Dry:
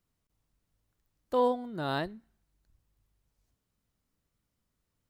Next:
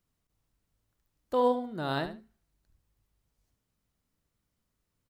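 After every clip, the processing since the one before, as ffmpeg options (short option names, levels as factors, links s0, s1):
-af "aecho=1:1:73|146:0.299|0.0537"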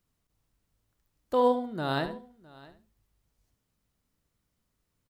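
-af "aecho=1:1:660:0.0794,volume=1.26"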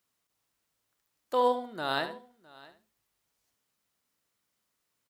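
-af "highpass=f=830:p=1,volume=1.41"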